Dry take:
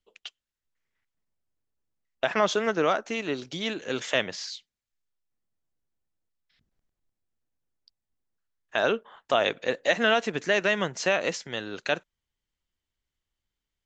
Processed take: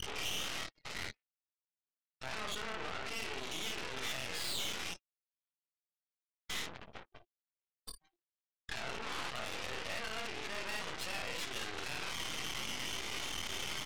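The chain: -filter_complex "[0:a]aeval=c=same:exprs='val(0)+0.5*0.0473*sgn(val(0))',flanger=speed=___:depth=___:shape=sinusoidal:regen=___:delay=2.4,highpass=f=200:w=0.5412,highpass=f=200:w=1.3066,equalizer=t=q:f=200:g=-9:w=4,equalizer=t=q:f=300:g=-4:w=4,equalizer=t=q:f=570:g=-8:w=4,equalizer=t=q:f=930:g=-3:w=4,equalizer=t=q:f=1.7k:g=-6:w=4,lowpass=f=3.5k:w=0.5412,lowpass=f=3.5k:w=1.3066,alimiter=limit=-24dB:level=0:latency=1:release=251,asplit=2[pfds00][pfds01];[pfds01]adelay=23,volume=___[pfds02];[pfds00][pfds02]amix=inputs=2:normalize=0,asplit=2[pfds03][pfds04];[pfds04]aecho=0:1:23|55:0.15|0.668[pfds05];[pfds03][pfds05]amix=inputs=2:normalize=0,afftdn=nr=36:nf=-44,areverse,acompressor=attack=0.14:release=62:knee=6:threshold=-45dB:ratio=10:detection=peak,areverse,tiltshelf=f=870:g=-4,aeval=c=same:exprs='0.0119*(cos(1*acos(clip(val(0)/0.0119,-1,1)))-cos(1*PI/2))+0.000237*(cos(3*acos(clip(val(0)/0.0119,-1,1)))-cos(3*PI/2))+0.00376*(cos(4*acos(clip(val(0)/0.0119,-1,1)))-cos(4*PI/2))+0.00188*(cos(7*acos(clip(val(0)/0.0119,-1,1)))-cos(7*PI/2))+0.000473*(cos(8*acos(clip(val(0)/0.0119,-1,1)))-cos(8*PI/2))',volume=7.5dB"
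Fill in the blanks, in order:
0.69, 4.1, 63, -4dB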